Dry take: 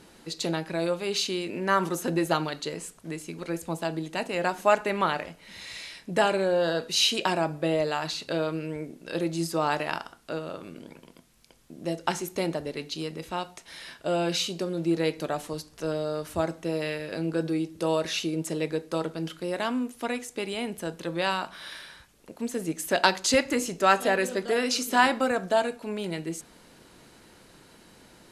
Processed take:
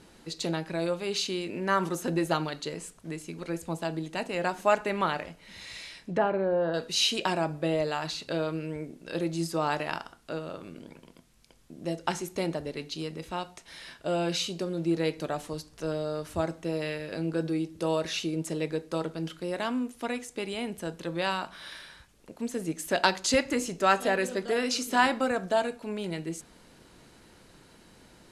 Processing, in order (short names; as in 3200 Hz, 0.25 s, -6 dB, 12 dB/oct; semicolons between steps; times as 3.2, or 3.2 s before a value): LPF 12000 Hz 12 dB/oct; low shelf 120 Hz +5.5 dB; 5.93–6.74 treble ducked by the level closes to 1400 Hz, closed at -23 dBFS; gain -2.5 dB